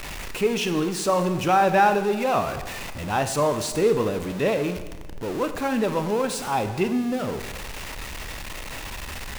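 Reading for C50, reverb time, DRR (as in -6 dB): 10.5 dB, 1.2 s, 8.5 dB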